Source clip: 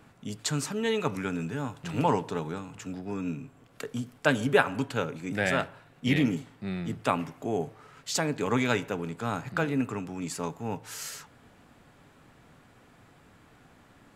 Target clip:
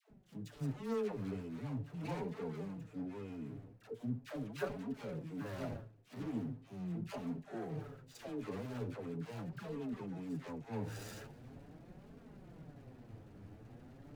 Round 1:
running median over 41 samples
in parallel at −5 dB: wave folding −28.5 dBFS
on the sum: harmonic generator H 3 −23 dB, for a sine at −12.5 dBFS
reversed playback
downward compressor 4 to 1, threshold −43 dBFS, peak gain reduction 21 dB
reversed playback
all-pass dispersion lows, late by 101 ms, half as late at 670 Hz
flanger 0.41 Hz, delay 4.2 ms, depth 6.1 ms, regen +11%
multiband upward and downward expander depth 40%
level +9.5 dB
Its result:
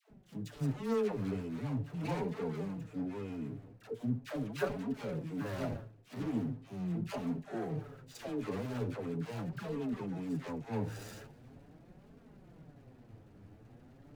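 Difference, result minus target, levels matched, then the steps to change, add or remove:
downward compressor: peak gain reduction −5 dB
change: downward compressor 4 to 1, threshold −49.5 dBFS, peak gain reduction 26 dB

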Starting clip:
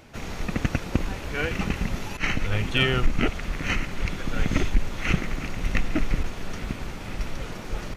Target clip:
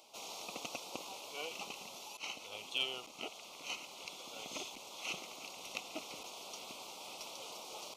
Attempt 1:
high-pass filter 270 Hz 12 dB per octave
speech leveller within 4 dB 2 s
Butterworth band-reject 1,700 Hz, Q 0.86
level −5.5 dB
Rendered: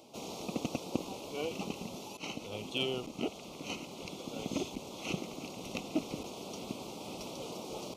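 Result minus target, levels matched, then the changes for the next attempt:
250 Hz band +13.0 dB
change: high-pass filter 890 Hz 12 dB per octave

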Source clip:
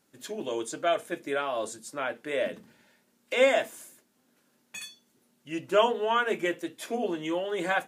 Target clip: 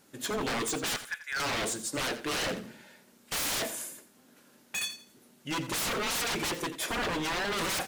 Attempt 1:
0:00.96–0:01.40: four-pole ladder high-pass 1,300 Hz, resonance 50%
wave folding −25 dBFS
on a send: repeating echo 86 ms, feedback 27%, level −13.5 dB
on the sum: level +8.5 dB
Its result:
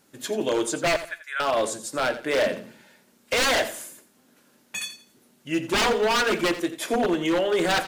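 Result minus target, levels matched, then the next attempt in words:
wave folding: distortion −16 dB
0:00.96–0:01.40: four-pole ladder high-pass 1,300 Hz, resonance 50%
wave folding −35 dBFS
on a send: repeating echo 86 ms, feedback 27%, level −13.5 dB
on the sum: level +8.5 dB

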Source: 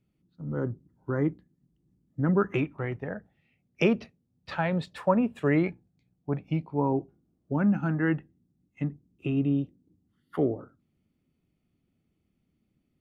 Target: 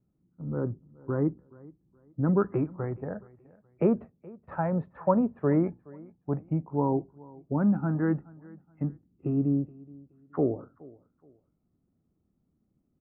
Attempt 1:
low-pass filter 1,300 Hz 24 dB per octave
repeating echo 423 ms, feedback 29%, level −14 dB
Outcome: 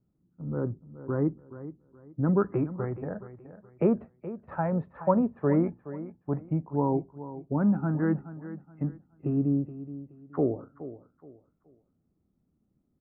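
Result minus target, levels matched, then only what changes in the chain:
echo-to-direct +8.5 dB
change: repeating echo 423 ms, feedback 29%, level −22.5 dB

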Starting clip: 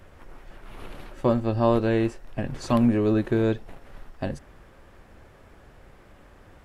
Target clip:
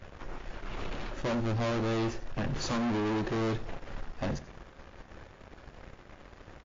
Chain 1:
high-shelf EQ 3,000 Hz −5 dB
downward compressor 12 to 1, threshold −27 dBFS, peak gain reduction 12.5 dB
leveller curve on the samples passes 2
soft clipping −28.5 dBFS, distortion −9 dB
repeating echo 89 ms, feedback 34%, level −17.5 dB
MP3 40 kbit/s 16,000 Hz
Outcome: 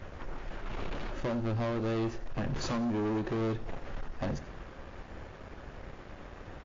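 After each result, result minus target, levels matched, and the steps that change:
downward compressor: peak gain reduction +12.5 dB; 8,000 Hz band −2.5 dB
remove: downward compressor 12 to 1, threshold −27 dBFS, peak gain reduction 12.5 dB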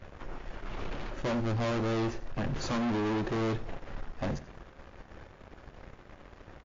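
8,000 Hz band −2.5 dB
remove: high-shelf EQ 3,000 Hz −5 dB

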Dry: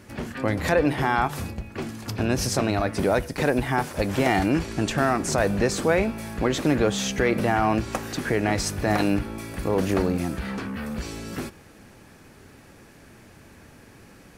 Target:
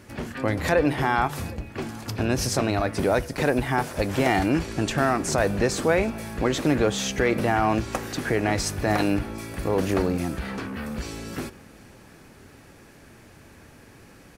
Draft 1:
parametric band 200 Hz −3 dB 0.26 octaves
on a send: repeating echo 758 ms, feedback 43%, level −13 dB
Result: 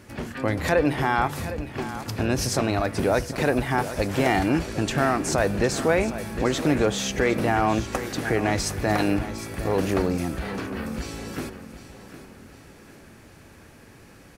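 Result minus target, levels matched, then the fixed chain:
echo-to-direct +11 dB
parametric band 200 Hz −3 dB 0.26 octaves
on a send: repeating echo 758 ms, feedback 43%, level −24 dB

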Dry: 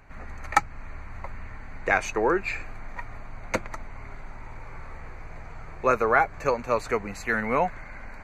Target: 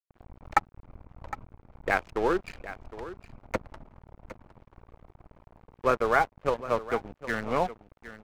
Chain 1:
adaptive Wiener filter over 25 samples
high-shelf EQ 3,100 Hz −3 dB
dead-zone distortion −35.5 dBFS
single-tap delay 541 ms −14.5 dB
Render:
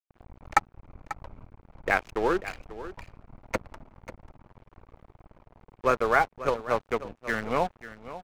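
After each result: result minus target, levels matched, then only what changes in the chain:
echo 220 ms early; 8,000 Hz band +2.5 dB
change: single-tap delay 761 ms −14.5 dB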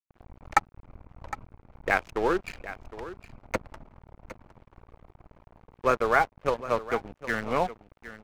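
8,000 Hz band +3.0 dB
change: high-shelf EQ 3,100 Hz −11 dB

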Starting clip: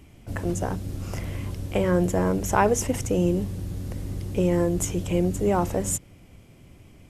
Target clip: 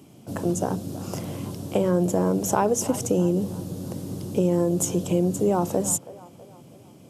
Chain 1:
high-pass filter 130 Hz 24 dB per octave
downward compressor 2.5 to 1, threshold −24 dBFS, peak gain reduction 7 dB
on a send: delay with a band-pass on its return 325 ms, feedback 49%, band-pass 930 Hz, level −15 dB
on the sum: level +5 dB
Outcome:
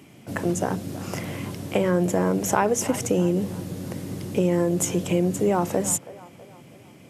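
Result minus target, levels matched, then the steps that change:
2,000 Hz band +8.0 dB
add after high-pass filter: parametric band 2,000 Hz −13 dB 0.92 octaves

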